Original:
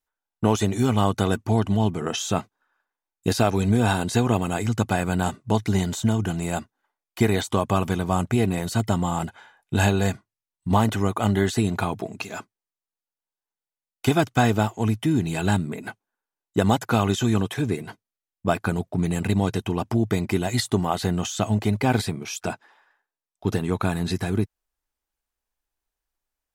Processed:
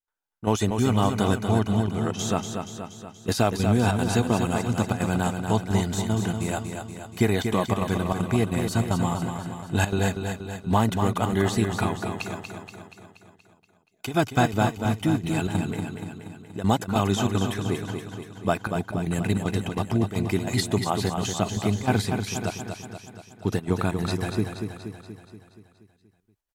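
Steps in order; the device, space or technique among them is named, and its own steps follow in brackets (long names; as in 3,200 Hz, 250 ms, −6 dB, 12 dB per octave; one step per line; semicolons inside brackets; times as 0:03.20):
trance gate with a delay (gate pattern ".xxxx.xxx" 192 BPM −12 dB; repeating echo 238 ms, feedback 58%, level −6.5 dB)
level −1.5 dB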